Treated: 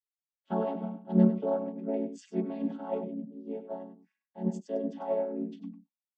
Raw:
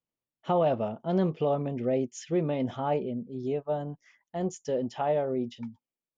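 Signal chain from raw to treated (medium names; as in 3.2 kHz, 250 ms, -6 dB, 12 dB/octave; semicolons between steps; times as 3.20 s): vocoder on a held chord minor triad, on F#3; echo from a far wall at 17 m, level -9 dB; three bands expanded up and down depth 70%; trim -2.5 dB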